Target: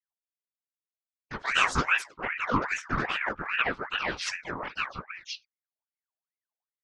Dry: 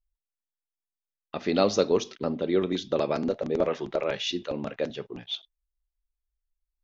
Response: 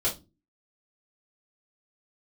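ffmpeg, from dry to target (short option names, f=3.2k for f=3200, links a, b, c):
-filter_complex "[0:a]afftdn=nr=21:nf=-39,afftfilt=real='hypot(re,im)*cos(2*PI*random(0))':imag='hypot(re,im)*sin(2*PI*random(1))':win_size=512:overlap=0.75,asplit=4[a][b][c][d];[b]asetrate=52444,aresample=44100,atempo=0.840896,volume=0dB[e];[c]asetrate=58866,aresample=44100,atempo=0.749154,volume=-6dB[f];[d]asetrate=66075,aresample=44100,atempo=0.66742,volume=-6dB[g];[a][e][f][g]amix=inputs=4:normalize=0,aeval=exprs='val(0)*sin(2*PI*1400*n/s+1400*0.55/2.5*sin(2*PI*2.5*n/s))':c=same,volume=2.5dB"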